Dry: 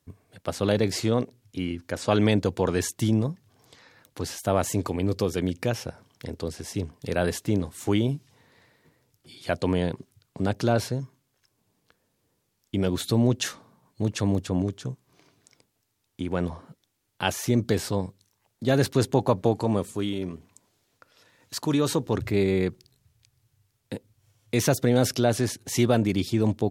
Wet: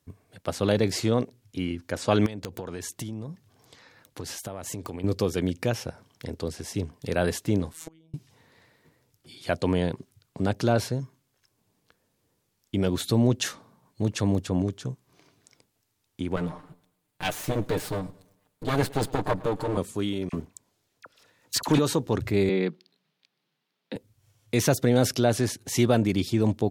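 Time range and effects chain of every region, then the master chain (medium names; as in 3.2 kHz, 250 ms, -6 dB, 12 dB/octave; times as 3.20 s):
2.26–5.04 s: compression 20:1, threshold -30 dBFS + integer overflow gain 21 dB
7.73–8.14 s: inverted gate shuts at -23 dBFS, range -33 dB + robot voice 161 Hz
16.36–19.77 s: comb filter that takes the minimum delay 6.6 ms + peaking EQ 5.7 kHz -5.5 dB 0.64 oct + modulated delay 110 ms, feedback 42%, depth 58 cents, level -22 dB
20.29–21.79 s: waveshaping leveller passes 2 + phase dispersion lows, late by 42 ms, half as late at 1.6 kHz
22.49–23.96 s: Chebyshev high-pass 160 Hz, order 6 + resonant high shelf 5.5 kHz -12.5 dB, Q 1.5
whole clip: none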